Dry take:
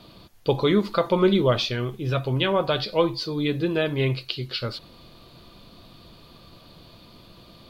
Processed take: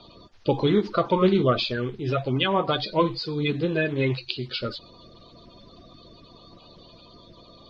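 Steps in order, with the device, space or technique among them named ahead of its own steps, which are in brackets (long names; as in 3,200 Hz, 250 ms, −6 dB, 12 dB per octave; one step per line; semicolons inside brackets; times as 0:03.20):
clip after many re-uploads (low-pass filter 5,600 Hz 24 dB per octave; spectral magnitudes quantised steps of 30 dB)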